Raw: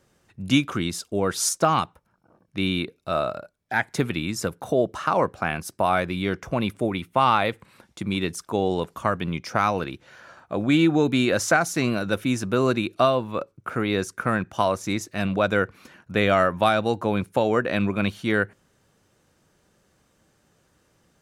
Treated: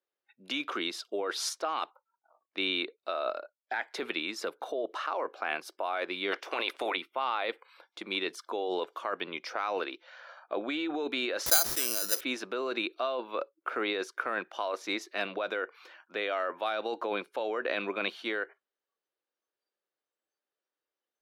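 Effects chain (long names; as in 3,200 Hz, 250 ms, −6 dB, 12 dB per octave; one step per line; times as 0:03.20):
0:06.31–0:06.95: ceiling on every frequency bin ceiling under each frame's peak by 21 dB
high-pass filter 350 Hz 24 dB per octave
high shelf with overshoot 5,600 Hz −10 dB, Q 1.5
0:11.46–0:12.21: bad sample-rate conversion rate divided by 8×, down none, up zero stuff
in parallel at +2.5 dB: compressor whose output falls as the input rises −27 dBFS, ratio −0.5
on the sum: noise reduction from a noise print of the clip's start 24 dB
level −13.5 dB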